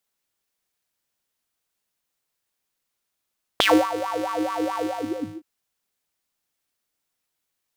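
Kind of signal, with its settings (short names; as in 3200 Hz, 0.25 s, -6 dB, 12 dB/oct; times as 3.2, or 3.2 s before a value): synth patch with filter wobble G#2, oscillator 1 square, oscillator 2 sine, interval +19 st, oscillator 2 level -2 dB, noise -30 dB, filter highpass, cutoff 190 Hz, Q 9.8, filter envelope 4 oct, filter decay 0.11 s, filter sustain 45%, attack 1.8 ms, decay 0.28 s, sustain -14 dB, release 0.60 s, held 1.22 s, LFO 4.6 Hz, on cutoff 0.8 oct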